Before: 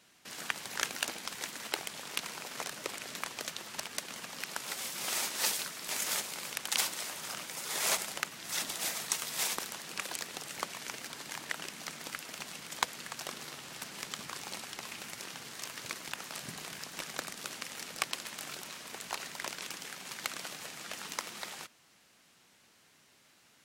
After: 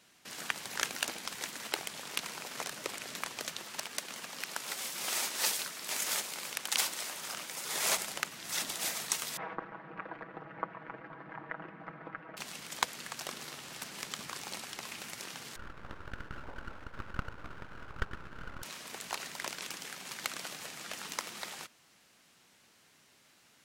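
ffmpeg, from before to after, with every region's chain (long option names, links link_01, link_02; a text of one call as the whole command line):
ffmpeg -i in.wav -filter_complex "[0:a]asettb=1/sr,asplit=3[link_01][link_02][link_03];[link_01]atrim=end=3.644[link_04];[link_02]atrim=start=3.64:end=7.65,asetpts=PTS-STARTPTS,afade=type=in:duration=0.004:curve=qsin,afade=type=out:start_time=4.006:duration=0.004:curve=qsin,lowshelf=frequency=120:gain=-10,acrusher=bits=6:mode=log:mix=0:aa=0.000001[link_05];[link_03]atrim=start=7.646[link_06];[link_04][link_05]acrossfade=duration=0.004:curve1=hsin:curve2=qsin[link_07];[link_07][link_06]acrossfade=duration=0.004:curve1=qsin:curve2=hsin,asettb=1/sr,asplit=3[link_08][link_09][link_10];[link_08]atrim=end=9.374[link_11];[link_09]atrim=start=9.37:end=12.37,asetpts=PTS-STARTPTS,afade=type=in:duration=0.004:curve=qsin,afade=type=out:start_time=2.996:duration=0.004:curve=qsin,lowpass=frequency=1600:width=0.5412,lowpass=frequency=1600:width=1.3066,aecho=1:1:6.2:0.69,atrim=end_sample=132300[link_12];[link_10]atrim=start=12.366[link_13];[link_11][link_12]acrossfade=duration=0.004:curve1=hsin:curve2=qsin[link_14];[link_14][link_13]acrossfade=duration=0.004:curve1=qsin:curve2=hsin,asettb=1/sr,asplit=3[link_15][link_16][link_17];[link_15]atrim=end=15.564[link_18];[link_16]atrim=start=15.56:end=18.63,asetpts=PTS-STARTPTS,afade=type=in:duration=0.004:curve=qsin,afade=type=out:start_time=3.066:duration=0.004:curve=qsin,lowpass=frequency=730:width_type=q:width=6.4,aeval=exprs='abs(val(0))':channel_layout=same[link_19];[link_17]atrim=start=18.626[link_20];[link_18][link_19]acrossfade=duration=0.004:curve1=hsin:curve2=qsin[link_21];[link_21][link_20]acrossfade=duration=0.004:curve1=qsin:curve2=hsin" out.wav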